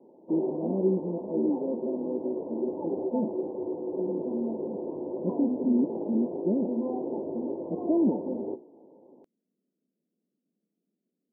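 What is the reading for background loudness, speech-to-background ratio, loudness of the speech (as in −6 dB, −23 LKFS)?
−33.0 LKFS, 2.0 dB, −31.0 LKFS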